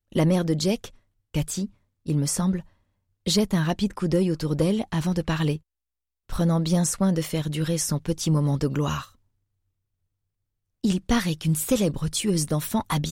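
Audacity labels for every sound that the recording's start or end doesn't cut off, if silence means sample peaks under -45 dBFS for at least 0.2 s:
1.340000	1.700000	sound
2.060000	2.650000	sound
3.260000	5.580000	sound
6.290000	9.090000	sound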